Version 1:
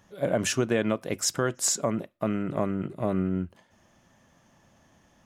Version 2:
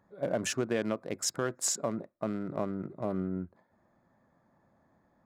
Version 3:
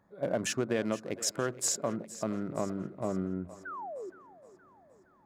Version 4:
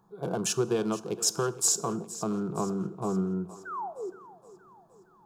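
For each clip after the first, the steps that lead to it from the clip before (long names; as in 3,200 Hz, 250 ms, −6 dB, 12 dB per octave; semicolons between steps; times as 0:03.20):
adaptive Wiener filter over 15 samples; low-shelf EQ 100 Hz −9.5 dB; level −4.5 dB
sound drawn into the spectrogram fall, 0:03.65–0:04.10, 340–1,600 Hz −40 dBFS; echo with a time of its own for lows and highs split 310 Hz, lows 87 ms, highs 468 ms, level −16 dB
phaser with its sweep stopped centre 390 Hz, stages 8; dense smooth reverb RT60 0.76 s, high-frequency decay 0.9×, DRR 16.5 dB; level +6.5 dB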